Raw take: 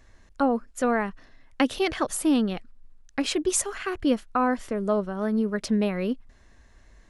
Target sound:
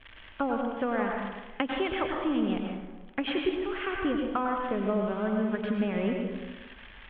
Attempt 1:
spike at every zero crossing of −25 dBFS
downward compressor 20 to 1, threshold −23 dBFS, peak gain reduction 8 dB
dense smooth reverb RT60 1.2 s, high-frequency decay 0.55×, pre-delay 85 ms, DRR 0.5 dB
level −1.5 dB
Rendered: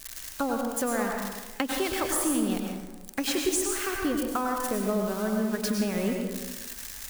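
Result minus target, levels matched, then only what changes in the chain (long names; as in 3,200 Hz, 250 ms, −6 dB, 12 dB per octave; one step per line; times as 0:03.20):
4,000 Hz band +2.5 dB
add after downward compressor: Chebyshev low-pass filter 3,300 Hz, order 6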